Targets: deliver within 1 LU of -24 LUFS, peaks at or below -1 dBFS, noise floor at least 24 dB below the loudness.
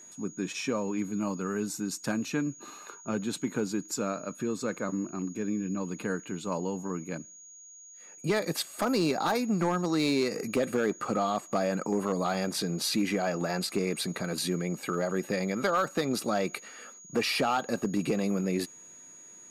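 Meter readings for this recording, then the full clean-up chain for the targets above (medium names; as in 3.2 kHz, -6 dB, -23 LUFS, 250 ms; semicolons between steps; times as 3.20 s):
clipped samples 0.4%; clipping level -19.5 dBFS; steady tone 6.7 kHz; tone level -48 dBFS; loudness -30.5 LUFS; peak level -19.5 dBFS; loudness target -24.0 LUFS
-> clip repair -19.5 dBFS; band-stop 6.7 kHz, Q 30; trim +6.5 dB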